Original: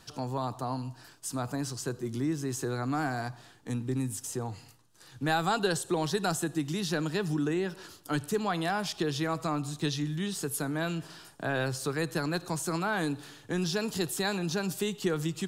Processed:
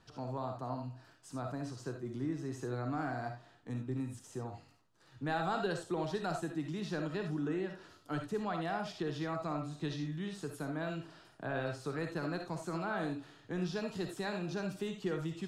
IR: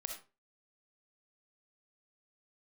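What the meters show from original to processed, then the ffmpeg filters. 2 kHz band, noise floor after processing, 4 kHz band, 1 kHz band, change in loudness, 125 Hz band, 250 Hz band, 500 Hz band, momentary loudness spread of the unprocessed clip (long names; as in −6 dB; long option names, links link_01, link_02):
−8.0 dB, −64 dBFS, −12.0 dB, −6.0 dB, −7.0 dB, −6.5 dB, −6.0 dB, −5.5 dB, 7 LU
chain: -filter_complex "[0:a]aemphasis=mode=reproduction:type=75fm[link_01];[1:a]atrim=start_sample=2205,atrim=end_sample=4410[link_02];[link_01][link_02]afir=irnorm=-1:irlink=0,volume=-4.5dB"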